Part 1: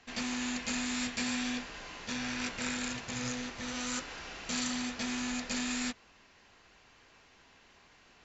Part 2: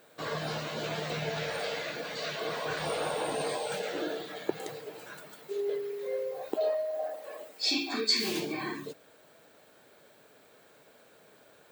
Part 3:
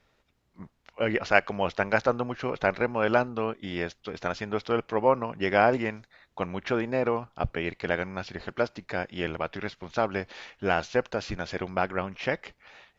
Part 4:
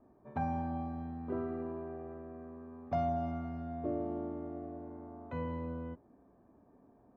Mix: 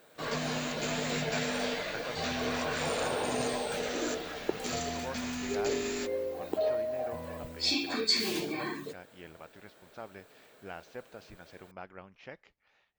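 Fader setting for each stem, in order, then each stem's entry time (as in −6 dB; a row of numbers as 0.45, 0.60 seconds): −3.0, −0.5, −18.5, −6.5 decibels; 0.15, 0.00, 0.00, 1.80 seconds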